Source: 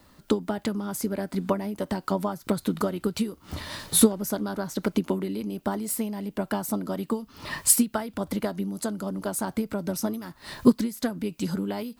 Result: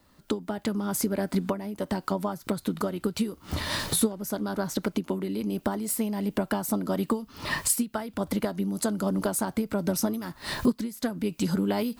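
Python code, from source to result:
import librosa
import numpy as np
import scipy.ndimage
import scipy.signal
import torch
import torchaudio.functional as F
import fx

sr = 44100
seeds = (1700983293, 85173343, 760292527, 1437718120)

y = fx.recorder_agc(x, sr, target_db=-10.5, rise_db_per_s=15.0, max_gain_db=30)
y = F.gain(torch.from_numpy(y), -6.5).numpy()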